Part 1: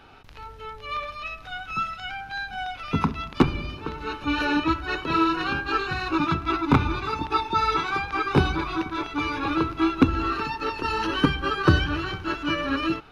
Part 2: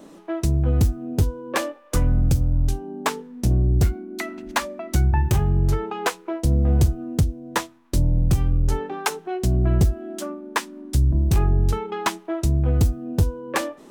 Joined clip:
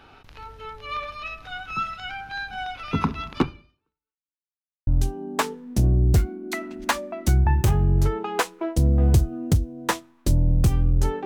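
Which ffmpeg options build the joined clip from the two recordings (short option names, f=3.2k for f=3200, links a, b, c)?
-filter_complex "[0:a]apad=whole_dur=11.25,atrim=end=11.25,asplit=2[a][b];[a]atrim=end=4.42,asetpts=PTS-STARTPTS,afade=t=out:st=3.38:d=1.04:c=exp[c];[b]atrim=start=4.42:end=4.87,asetpts=PTS-STARTPTS,volume=0[d];[1:a]atrim=start=2.54:end=8.92,asetpts=PTS-STARTPTS,afade=t=in:d=0.004:c=hsin[e];[c][d][e]concat=n=3:v=0:a=1"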